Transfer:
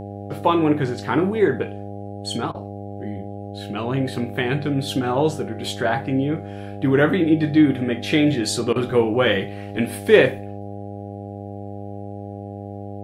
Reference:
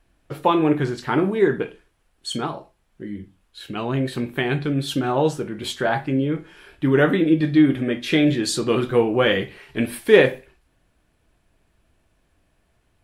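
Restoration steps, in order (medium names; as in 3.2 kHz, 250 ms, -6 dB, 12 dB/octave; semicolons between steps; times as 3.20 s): de-hum 100.8 Hz, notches 8; interpolate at 2.52/8.73 s, 26 ms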